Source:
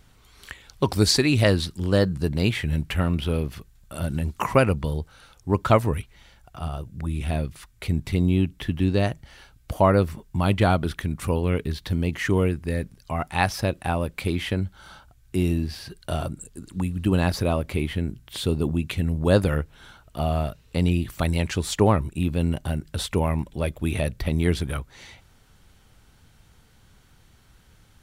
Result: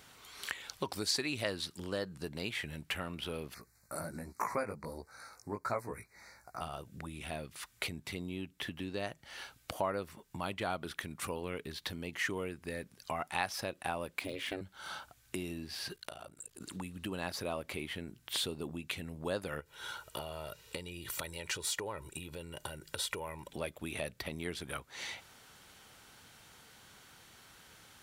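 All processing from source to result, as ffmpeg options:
-filter_complex "[0:a]asettb=1/sr,asplit=3[s0][s1][s2];[s0]atrim=end=3.544[s3];[s1]atrim=start=3.54:end=6.61,asetpts=PTS-STARTPTS,afade=t=in:d=0.004:c=qsin,afade=t=out:st=3.066:d=0.004:c=qsin,flanger=delay=16:depth=3.5:speed=1.3,asuperstop=centerf=3100:order=8:qfactor=1.8[s4];[s2]atrim=start=6.606[s5];[s3][s4]acrossfade=d=0.004:c1=hsin:c2=qsin[s6];[s6][s5]acrossfade=d=0.004:c1=qsin:c2=hsin,asettb=1/sr,asplit=3[s7][s8][s9];[s7]atrim=end=14.194[s10];[s8]atrim=start=14.19:end=14.61,asetpts=PTS-STARTPTS,afade=t=in:d=0.004:c=qsin,afade=t=out:st=0.416:d=0.004:c=qsin,deesser=0.8,aeval=exprs='val(0)*sin(2*PI*190*n/s)':c=same[s11];[s9]atrim=start=14.606[s12];[s10][s11]acrossfade=d=0.004:c1=hsin:c2=qsin[s13];[s13][s12]acrossfade=d=0.004:c1=qsin:c2=hsin,asettb=1/sr,asplit=3[s14][s15][s16];[s14]atrim=end=15.964[s17];[s15]atrim=start=15.96:end=16.61,asetpts=PTS-STARTPTS,afade=t=in:d=0.004:c=qsin,afade=t=out:st=0.646:d=0.004:c=qsin,equalizer=f=200:t=o:w=0.96:g=-9,acompressor=threshold=0.00891:ratio=8:attack=3.2:release=140:knee=1:detection=peak,tremolo=f=56:d=1[s18];[s16]atrim=start=16.606[s19];[s17][s18]acrossfade=d=0.004:c1=hsin:c2=qsin[s20];[s20][s19]acrossfade=d=0.004:c1=qsin:c2=hsin,asettb=1/sr,asplit=3[s21][s22][s23];[s21]atrim=end=19.604[s24];[s22]atrim=start=19.6:end=23.48,asetpts=PTS-STARTPTS,afade=t=in:d=0.004:c=qsin,afade=t=out:st=3.876:d=0.004:c=qsin,highshelf=f=5300:g=4,aecho=1:1:2.1:0.59,atrim=end_sample=171108,acompressor=threshold=0.0355:ratio=6:attack=3.2:release=140:knee=1:detection=peak[s25];[s23]atrim=start=23.476[s26];[s24][s25]acrossfade=d=0.004:c1=hsin:c2=qsin[s27];[s27][s26]acrossfade=d=0.004:c1=qsin:c2=hsin,acompressor=threshold=0.0126:ratio=3,highpass=f=570:p=1,volume=1.68"

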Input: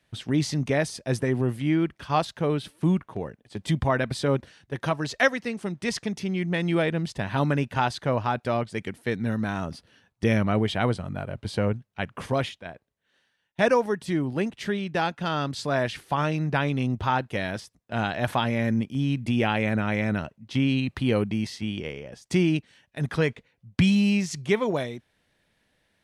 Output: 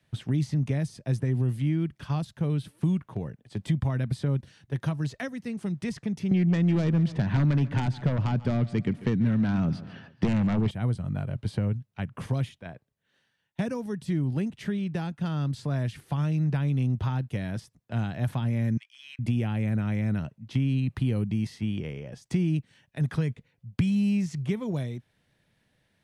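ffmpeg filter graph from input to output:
-filter_complex "[0:a]asettb=1/sr,asplit=3[s0][s1][s2];[s0]atrim=end=6.314[s3];[s1]atrim=start=6.31:end=10.71,asetpts=PTS-STARTPTS,afade=t=in:d=0.004:c=qsin,afade=t=out:st=4.396:d=0.004:c=qsin,highpass=120,lowpass=3000,aeval=exprs='0.376*sin(PI/2*3.16*val(0)/0.376)':c=same,aecho=1:1:141|282|423:0.1|0.039|0.0152,atrim=end_sample=194040[s4];[s2]atrim=start=10.706[s5];[s3][s4]acrossfade=d=0.004:c1=hsin:c2=qsin[s6];[s6][s5]acrossfade=d=0.004:c1=qsin:c2=hsin,asettb=1/sr,asplit=3[s7][s8][s9];[s7]atrim=end=18.774[s10];[s8]atrim=start=18.77:end=19.19,asetpts=PTS-STARTPTS,afade=t=in:d=0.004:c=qsin,afade=t=out:st=0.416:d=0.004:c=qsin,highpass=f=1500:w=0.5412,highpass=f=1500:w=1.3066,adynamicsmooth=sensitivity=7:basefreq=6400[s11];[s9]atrim=start=19.186[s12];[s10][s11]acrossfade=d=0.004:c1=hsin:c2=qsin[s13];[s13][s12]acrossfade=d=0.004:c1=qsin:c2=hsin,equalizer=f=130:w=1.1:g=9,acrossover=split=280|2700|7600[s14][s15][s16][s17];[s14]acompressor=threshold=0.0891:ratio=4[s18];[s15]acompressor=threshold=0.0158:ratio=4[s19];[s16]acompressor=threshold=0.00316:ratio=4[s20];[s17]acompressor=threshold=0.00224:ratio=4[s21];[s18][s19][s20][s21]amix=inputs=4:normalize=0,volume=0.75"

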